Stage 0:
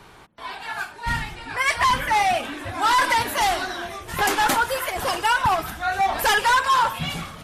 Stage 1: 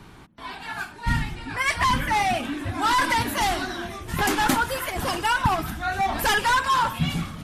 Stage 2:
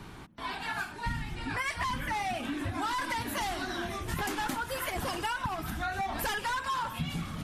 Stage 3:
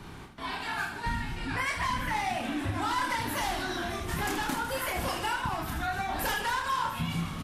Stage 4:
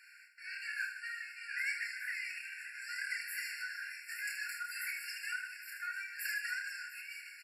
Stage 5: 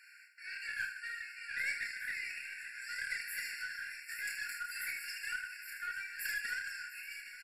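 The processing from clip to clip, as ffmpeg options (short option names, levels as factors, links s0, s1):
-af "lowshelf=f=360:t=q:w=1.5:g=7,volume=0.794"
-af "acompressor=threshold=0.0316:ratio=10"
-af "aecho=1:1:30|78|154.8|277.7|474.3:0.631|0.398|0.251|0.158|0.1"
-af "afftfilt=real='re*eq(mod(floor(b*sr/1024/1400),2),1)':imag='im*eq(mod(floor(b*sr/1024/1400),2),1)':win_size=1024:overlap=0.75,volume=0.668"
-af "aeval=exprs='0.0631*(cos(1*acos(clip(val(0)/0.0631,-1,1)))-cos(1*PI/2))+0.00112*(cos(4*acos(clip(val(0)/0.0631,-1,1)))-cos(4*PI/2))+0.00355*(cos(6*acos(clip(val(0)/0.0631,-1,1)))-cos(6*PI/2))+0.00126*(cos(8*acos(clip(val(0)/0.0631,-1,1)))-cos(8*PI/2))':c=same,aecho=1:1:822:0.15"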